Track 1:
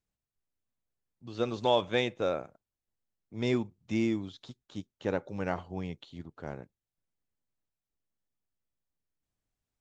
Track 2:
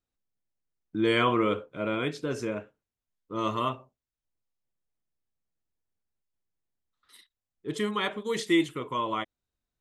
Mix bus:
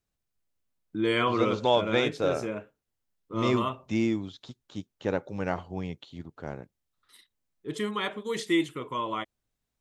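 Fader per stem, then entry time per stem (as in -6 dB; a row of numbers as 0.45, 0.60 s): +2.5, -1.5 dB; 0.00, 0.00 s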